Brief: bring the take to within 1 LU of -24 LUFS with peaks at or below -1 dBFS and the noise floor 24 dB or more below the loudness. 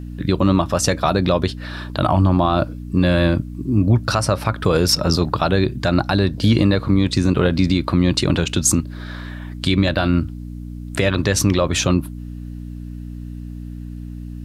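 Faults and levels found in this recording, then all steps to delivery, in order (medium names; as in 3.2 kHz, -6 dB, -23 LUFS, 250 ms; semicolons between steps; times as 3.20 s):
hum 60 Hz; highest harmonic 300 Hz; hum level -28 dBFS; loudness -18.5 LUFS; peak level -4.0 dBFS; loudness target -24.0 LUFS
-> de-hum 60 Hz, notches 5; trim -5.5 dB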